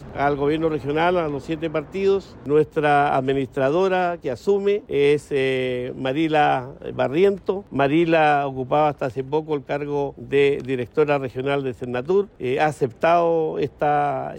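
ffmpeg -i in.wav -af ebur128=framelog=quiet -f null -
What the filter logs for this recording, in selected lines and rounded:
Integrated loudness:
  I:         -21.3 LUFS
  Threshold: -31.3 LUFS
Loudness range:
  LRA:         2.2 LU
  Threshold: -41.3 LUFS
  LRA low:   -22.6 LUFS
  LRA high:  -20.4 LUFS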